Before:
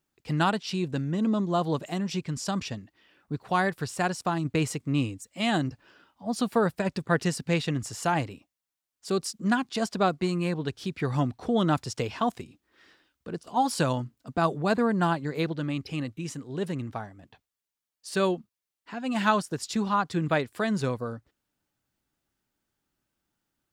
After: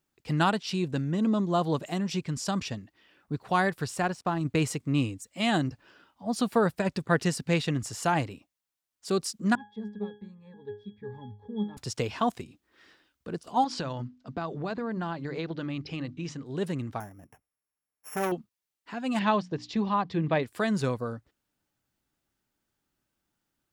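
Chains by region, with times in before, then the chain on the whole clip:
0:04.00–0:04.41: mu-law and A-law mismatch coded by A + high-shelf EQ 4,600 Hz −11.5 dB
0:09.55–0:11.77: leveller curve on the samples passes 1 + resonances in every octave G#, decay 0.31 s
0:13.64–0:16.46: low-pass filter 5,800 Hz 24 dB per octave + mains-hum notches 50/100/150/200/250/300 Hz + downward compressor, threshold −29 dBFS
0:17.00–0:18.32: samples sorted by size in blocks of 8 samples + Butterworth band-reject 4,200 Hz, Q 0.93 + saturating transformer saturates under 1,500 Hz
0:19.19–0:20.43: Bessel low-pass filter 3,500 Hz, order 6 + parametric band 1,400 Hz −12.5 dB 0.23 octaves + mains-hum notches 60/120/180/240/300 Hz
whole clip: no processing

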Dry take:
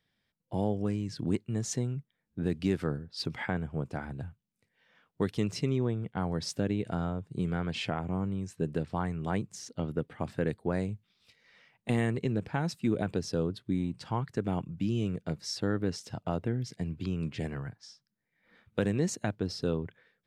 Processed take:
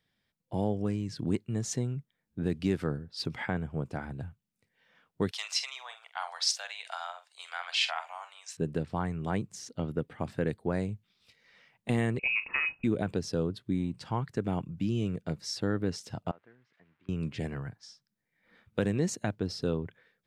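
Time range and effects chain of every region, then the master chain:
0:05.31–0:08.57: Butterworth high-pass 700 Hz 48 dB per octave + parametric band 4,400 Hz +10.5 dB 2.3 octaves + double-tracking delay 46 ms −11 dB
0:12.19–0:12.84: voice inversion scrambler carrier 2,700 Hz + notch filter 1,200 Hz, Q 21 + double-tracking delay 38 ms −13 dB
0:16.31–0:17.09: spike at every zero crossing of −31.5 dBFS + low-pass filter 1,800 Hz 24 dB per octave + first difference
whole clip: no processing

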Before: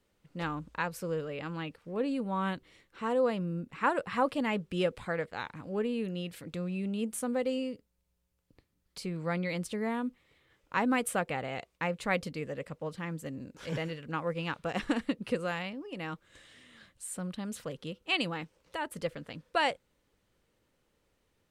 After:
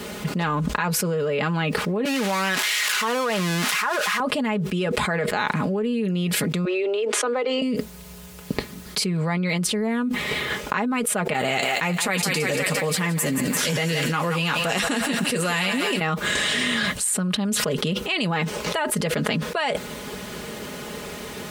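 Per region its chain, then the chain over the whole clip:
0:02.05–0:04.20: spike at every zero crossing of −23.5 dBFS + resonant band-pass 1,500 Hz, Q 0.74
0:06.65–0:07.62: Butterworth high-pass 300 Hz 72 dB per octave + high-frequency loss of the air 160 metres
0:11.33–0:16.01: first-order pre-emphasis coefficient 0.8 + notch comb filter 210 Hz + feedback echo with a high-pass in the loop 172 ms, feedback 64%, high-pass 440 Hz, level −11 dB
whole clip: high-pass filter 91 Hz; comb filter 4.8 ms, depth 64%; envelope flattener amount 100%

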